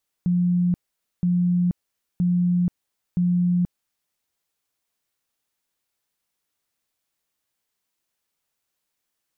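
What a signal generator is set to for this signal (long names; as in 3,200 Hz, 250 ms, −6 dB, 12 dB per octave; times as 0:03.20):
tone bursts 177 Hz, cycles 85, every 0.97 s, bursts 4, −17 dBFS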